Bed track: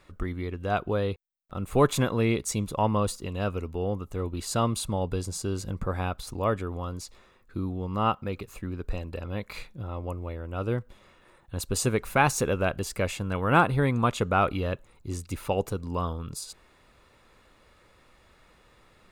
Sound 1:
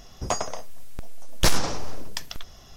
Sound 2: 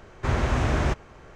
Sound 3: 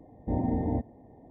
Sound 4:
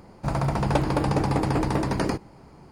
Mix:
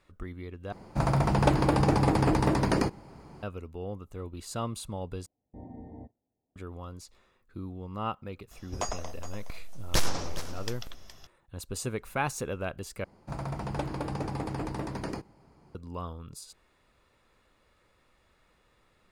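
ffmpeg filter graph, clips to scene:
-filter_complex "[4:a]asplit=2[a][b];[0:a]volume=-8dB[c];[3:a]agate=range=-15dB:threshold=-43dB:ratio=16:release=100:detection=peak[d];[1:a]aecho=1:1:418:0.224[e];[c]asplit=4[f][g][h][i];[f]atrim=end=0.724[j];[a]atrim=end=2.71,asetpts=PTS-STARTPTS,volume=-0.5dB[k];[g]atrim=start=3.426:end=5.264[l];[d]atrim=end=1.3,asetpts=PTS-STARTPTS,volume=-17dB[m];[h]atrim=start=6.556:end=13.044[n];[b]atrim=end=2.71,asetpts=PTS-STARTPTS,volume=-10.5dB[o];[i]atrim=start=15.746[p];[e]atrim=end=2.76,asetpts=PTS-STARTPTS,volume=-6.5dB,afade=t=in:d=0.004:c=hsin,afade=t=out:st=2.756:d=0.004:c=hsin,adelay=8510[q];[j][k]acrossfade=d=0.004:c1=hsin:c2=hsin[r];[r][l]acrossfade=d=0.004:c1=hsin:c2=hsin[s];[s][m]acrossfade=d=0.004:c1=hsin:c2=hsin[t];[t][n]acrossfade=d=0.004:c1=hsin:c2=hsin[u];[u][o]acrossfade=d=0.004:c1=hsin:c2=hsin[v];[v][p]acrossfade=d=0.004:c1=hsin:c2=hsin[w];[w][q]amix=inputs=2:normalize=0"

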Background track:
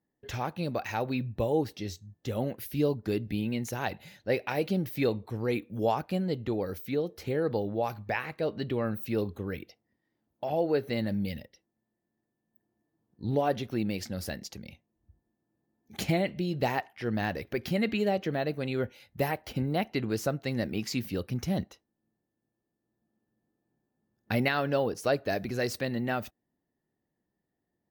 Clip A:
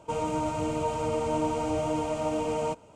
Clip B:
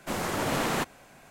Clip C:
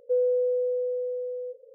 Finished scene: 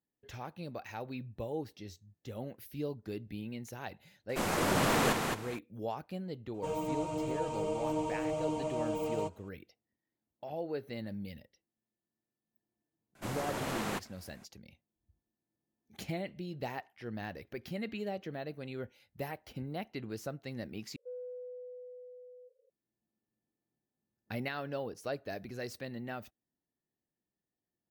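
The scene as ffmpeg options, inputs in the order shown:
-filter_complex "[2:a]asplit=2[a][b];[0:a]volume=-10.5dB[c];[a]aecho=1:1:217|434|651:0.631|0.126|0.0252[d];[1:a]aecho=1:1:6.2:1[e];[3:a]highpass=550[f];[c]asplit=2[g][h];[g]atrim=end=20.964[i];[f]atrim=end=1.74,asetpts=PTS-STARTPTS,volume=-16dB[j];[h]atrim=start=22.696[k];[d]atrim=end=1.3,asetpts=PTS-STARTPTS,volume=-1.5dB,afade=t=in:d=0.004:c=hsin,afade=t=out:st=1.296:d=0.004:c=hsin,adelay=189189S[l];[e]atrim=end=2.95,asetpts=PTS-STARTPTS,volume=-10.5dB,afade=t=in:d=0.004:c=hsin,afade=t=out:st=2.946:d=0.004:c=hsin,adelay=6540[m];[b]atrim=end=1.3,asetpts=PTS-STARTPTS,volume=-8.5dB,afade=t=in:d=0.004:c=hsin,afade=t=out:st=1.296:d=0.004:c=hsin,adelay=13150[n];[i][j]acrossfade=d=0.004:c1=hsin:c2=hsin[o];[o][k]acrossfade=d=0.004:c1=hsin:c2=hsin[p];[p][l][m][n]amix=inputs=4:normalize=0"

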